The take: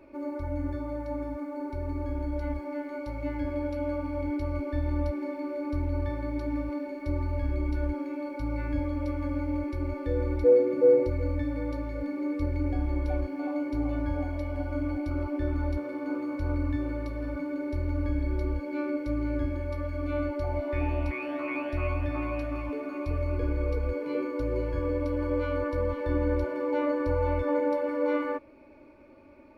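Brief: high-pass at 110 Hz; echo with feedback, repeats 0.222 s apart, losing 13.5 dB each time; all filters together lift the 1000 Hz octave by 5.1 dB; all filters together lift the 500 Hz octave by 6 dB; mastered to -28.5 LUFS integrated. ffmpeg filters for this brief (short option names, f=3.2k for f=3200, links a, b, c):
-af "highpass=110,equalizer=f=500:t=o:g=5.5,equalizer=f=1k:t=o:g=4.5,aecho=1:1:222|444:0.211|0.0444,volume=-1.5dB"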